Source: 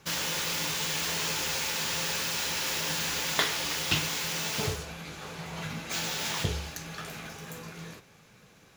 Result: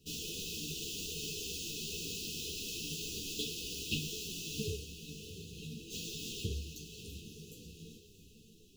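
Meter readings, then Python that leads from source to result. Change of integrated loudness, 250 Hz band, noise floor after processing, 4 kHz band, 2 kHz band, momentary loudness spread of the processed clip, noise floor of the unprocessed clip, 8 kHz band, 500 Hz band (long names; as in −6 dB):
−10.0 dB, −5.5 dB, −60 dBFS, −9.0 dB, −16.0 dB, 14 LU, −57 dBFS, −9.0 dB, −8.0 dB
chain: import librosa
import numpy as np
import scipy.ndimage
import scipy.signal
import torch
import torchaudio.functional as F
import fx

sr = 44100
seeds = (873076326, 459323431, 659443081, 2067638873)

p1 = fx.dmg_noise_colour(x, sr, seeds[0], colour='pink', level_db=-59.0)
p2 = fx.sample_hold(p1, sr, seeds[1], rate_hz=3000.0, jitter_pct=0)
p3 = p1 + F.gain(torch.from_numpy(p2), -7.0).numpy()
p4 = fx.brickwall_bandstop(p3, sr, low_hz=490.0, high_hz=2500.0)
p5 = p4 + fx.echo_diffused(p4, sr, ms=686, feedback_pct=40, wet_db=-11, dry=0)
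p6 = fx.ensemble(p5, sr)
y = F.gain(torch.from_numpy(p6), -6.5).numpy()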